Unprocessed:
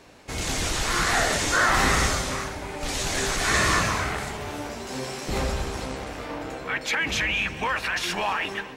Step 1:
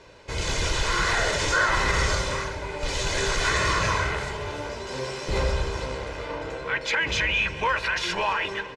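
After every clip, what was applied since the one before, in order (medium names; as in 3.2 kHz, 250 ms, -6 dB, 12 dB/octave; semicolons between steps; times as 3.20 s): peak limiter -14.5 dBFS, peak gain reduction 6 dB; low-pass 6.1 kHz 12 dB/octave; comb 2 ms, depth 57%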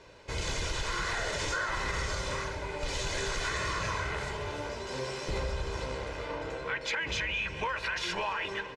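compression, threshold -25 dBFS, peak gain reduction 7.5 dB; trim -4 dB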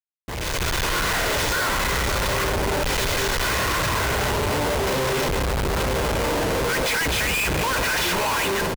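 speakerphone echo 100 ms, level -16 dB; Schmitt trigger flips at -41.5 dBFS; level rider gain up to 9.5 dB; trim +2 dB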